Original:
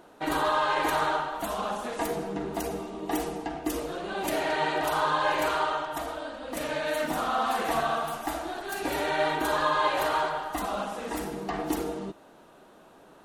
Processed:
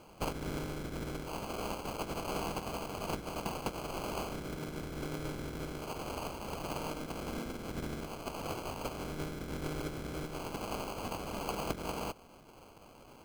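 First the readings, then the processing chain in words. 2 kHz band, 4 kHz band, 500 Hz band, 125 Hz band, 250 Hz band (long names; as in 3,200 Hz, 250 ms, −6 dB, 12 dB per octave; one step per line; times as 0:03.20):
−14.5 dB, −9.5 dB, −10.5 dB, +1.5 dB, −6.5 dB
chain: ceiling on every frequency bin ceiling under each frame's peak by 28 dB
treble cut that deepens with the level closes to 360 Hz, closed at −24.5 dBFS
decimation without filtering 24×
level −1.5 dB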